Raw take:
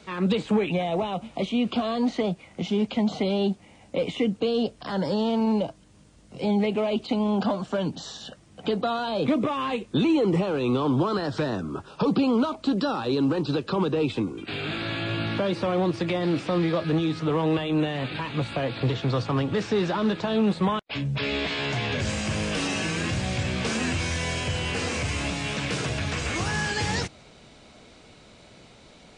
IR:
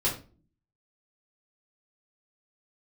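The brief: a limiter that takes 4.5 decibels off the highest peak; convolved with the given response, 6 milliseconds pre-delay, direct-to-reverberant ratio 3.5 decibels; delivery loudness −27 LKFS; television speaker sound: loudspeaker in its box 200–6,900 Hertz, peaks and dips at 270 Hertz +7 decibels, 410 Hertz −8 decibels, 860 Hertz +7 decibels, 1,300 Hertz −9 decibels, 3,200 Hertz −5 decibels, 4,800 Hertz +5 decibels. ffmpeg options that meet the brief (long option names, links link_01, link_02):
-filter_complex "[0:a]alimiter=limit=-18dB:level=0:latency=1,asplit=2[link_01][link_02];[1:a]atrim=start_sample=2205,adelay=6[link_03];[link_02][link_03]afir=irnorm=-1:irlink=0,volume=-12.5dB[link_04];[link_01][link_04]amix=inputs=2:normalize=0,highpass=frequency=200:width=0.5412,highpass=frequency=200:width=1.3066,equalizer=frequency=270:width_type=q:width=4:gain=7,equalizer=frequency=410:width_type=q:width=4:gain=-8,equalizer=frequency=860:width_type=q:width=4:gain=7,equalizer=frequency=1300:width_type=q:width=4:gain=-9,equalizer=frequency=3200:width_type=q:width=4:gain=-5,equalizer=frequency=4800:width_type=q:width=4:gain=5,lowpass=frequency=6900:width=0.5412,lowpass=frequency=6900:width=1.3066,volume=-1dB"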